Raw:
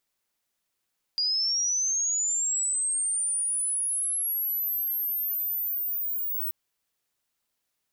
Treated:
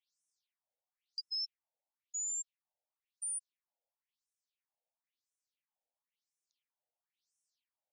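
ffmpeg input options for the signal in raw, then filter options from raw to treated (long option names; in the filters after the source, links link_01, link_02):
-f lavfi -i "aevalsrc='pow(10,(-23-4*t/5.33)/20)*sin(2*PI*(4800*t+11200*t*t/(2*5.33)))':duration=5.33:sample_rate=44100"
-filter_complex "[0:a]equalizer=frequency=1400:width_type=o:width=1:gain=-15,acrossover=split=290|2800[link_01][link_02][link_03];[link_03]alimiter=level_in=10.5dB:limit=-24dB:level=0:latency=1,volume=-10.5dB[link_04];[link_01][link_02][link_04]amix=inputs=3:normalize=0,afftfilt=real='re*between(b*sr/1024,640*pow(7600/640,0.5+0.5*sin(2*PI*0.98*pts/sr))/1.41,640*pow(7600/640,0.5+0.5*sin(2*PI*0.98*pts/sr))*1.41)':imag='im*between(b*sr/1024,640*pow(7600/640,0.5+0.5*sin(2*PI*0.98*pts/sr))/1.41,640*pow(7600/640,0.5+0.5*sin(2*PI*0.98*pts/sr))*1.41)':win_size=1024:overlap=0.75"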